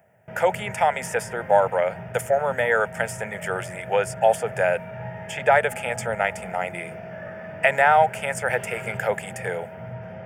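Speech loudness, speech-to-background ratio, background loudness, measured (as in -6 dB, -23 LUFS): -23.5 LUFS, 13.0 dB, -36.5 LUFS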